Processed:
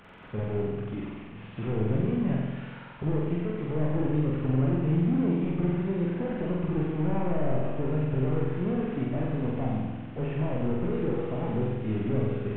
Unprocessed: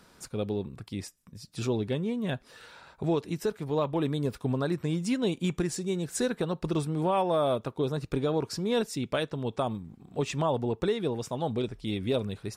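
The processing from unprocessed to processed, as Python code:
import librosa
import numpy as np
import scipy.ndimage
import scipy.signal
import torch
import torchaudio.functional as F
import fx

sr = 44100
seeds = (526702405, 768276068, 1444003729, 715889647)

y = fx.delta_mod(x, sr, bps=16000, step_db=-47.0)
y = fx.room_flutter(y, sr, wall_m=7.9, rt60_s=1.4)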